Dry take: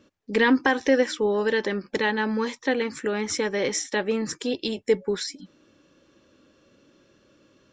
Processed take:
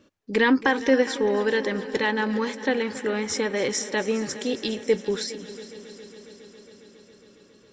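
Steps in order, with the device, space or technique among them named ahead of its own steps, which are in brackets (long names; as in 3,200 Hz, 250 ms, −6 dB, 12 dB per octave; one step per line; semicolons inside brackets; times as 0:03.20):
multi-head tape echo (echo machine with several playback heads 137 ms, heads second and third, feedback 72%, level −17 dB; tape wow and flutter 18 cents)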